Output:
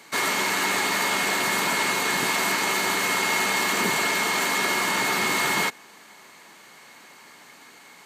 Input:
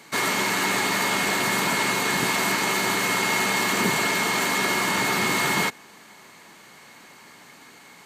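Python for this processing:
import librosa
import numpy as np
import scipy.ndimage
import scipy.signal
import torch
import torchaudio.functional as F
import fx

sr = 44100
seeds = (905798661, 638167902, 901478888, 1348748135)

y = fx.low_shelf(x, sr, hz=180.0, db=-10.5)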